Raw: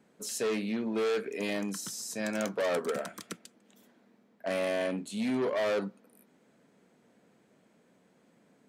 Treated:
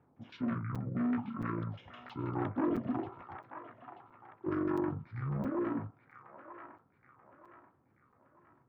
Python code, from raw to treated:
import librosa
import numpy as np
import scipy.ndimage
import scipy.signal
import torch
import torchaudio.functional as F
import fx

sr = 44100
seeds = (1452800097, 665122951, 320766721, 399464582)

y = fx.pitch_heads(x, sr, semitones=-10.5)
y = fx.rider(y, sr, range_db=3, speed_s=2.0)
y = fx.filter_lfo_notch(y, sr, shape='square', hz=1.7, low_hz=810.0, high_hz=4400.0, q=1.6)
y = fx.low_shelf(y, sr, hz=250.0, db=-5.0)
y = fx.filter_lfo_lowpass(y, sr, shape='saw_down', hz=6.2, low_hz=660.0, high_hz=2000.0, q=1.1)
y = fx.high_shelf(y, sr, hz=3900.0, db=-10.5)
y = fx.echo_wet_bandpass(y, sr, ms=934, feedback_pct=41, hz=1400.0, wet_db=-6.0)
y = fx.buffer_crackle(y, sr, first_s=0.75, period_s=0.67, block=256, kind='zero')